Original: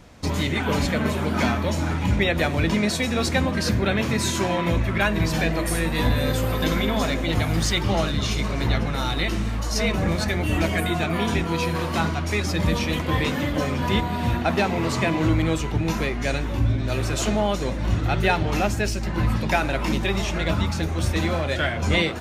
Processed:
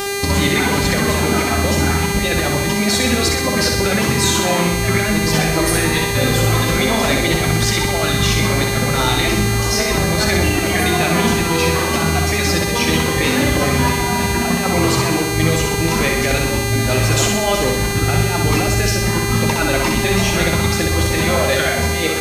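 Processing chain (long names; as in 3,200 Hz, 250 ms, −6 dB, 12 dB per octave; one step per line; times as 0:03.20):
reverb reduction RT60 0.85 s
compressor whose output falls as the input rises −25 dBFS, ratio −0.5
hum with harmonics 400 Hz, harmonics 36, −30 dBFS −4 dB per octave
on a send: flutter between parallel walls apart 10.8 metres, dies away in 0.88 s
on the sum: level +7 dB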